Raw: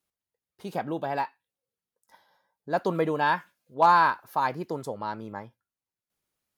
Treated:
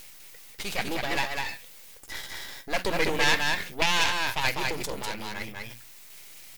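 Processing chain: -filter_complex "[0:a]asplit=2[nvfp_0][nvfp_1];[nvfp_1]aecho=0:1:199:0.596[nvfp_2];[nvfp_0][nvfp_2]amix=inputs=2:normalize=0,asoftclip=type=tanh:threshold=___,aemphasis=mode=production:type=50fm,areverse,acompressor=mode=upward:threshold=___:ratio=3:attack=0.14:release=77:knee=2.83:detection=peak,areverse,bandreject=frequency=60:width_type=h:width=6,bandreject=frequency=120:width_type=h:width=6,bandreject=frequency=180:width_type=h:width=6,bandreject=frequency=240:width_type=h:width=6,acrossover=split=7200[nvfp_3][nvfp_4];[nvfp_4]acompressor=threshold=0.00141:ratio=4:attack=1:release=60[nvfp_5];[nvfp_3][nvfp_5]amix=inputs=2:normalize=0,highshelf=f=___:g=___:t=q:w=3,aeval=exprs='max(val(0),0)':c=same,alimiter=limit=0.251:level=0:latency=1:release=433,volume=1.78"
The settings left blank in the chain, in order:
0.126, 0.0398, 1600, 8.5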